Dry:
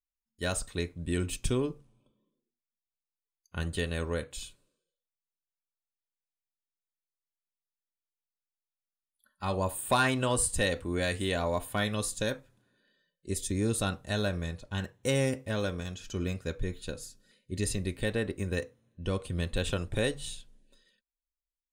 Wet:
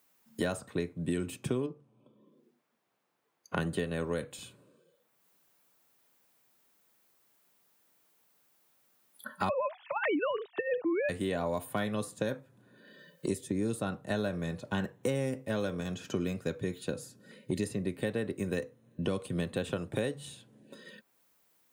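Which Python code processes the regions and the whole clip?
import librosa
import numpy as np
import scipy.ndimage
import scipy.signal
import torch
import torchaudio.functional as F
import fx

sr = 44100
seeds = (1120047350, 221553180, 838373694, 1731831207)

y = fx.chain(x, sr, fx.lowpass(hz=1500.0, slope=6),
    fx.low_shelf(hz=210.0, db=-8.0), at=(1.66, 3.58))
y = fx.chain(y, sr, fx.sine_speech(),
    fx.over_compress(threshold_db=-29.0, ratio=-0.5), at=(9.49, 11.09))
y = scipy.signal.sosfilt(scipy.signal.butter(4, 120.0, 'highpass', fs=sr, output='sos'), y)
y = fx.peak_eq(y, sr, hz=5100.0, db=-8.5, octaves=3.0)
y = fx.band_squash(y, sr, depth_pct=100)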